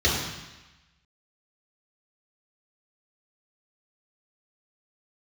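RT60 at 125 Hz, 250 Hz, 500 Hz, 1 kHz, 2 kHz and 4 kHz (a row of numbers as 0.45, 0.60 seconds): 1.1, 1.1, 0.95, 1.2, 1.2, 1.2 seconds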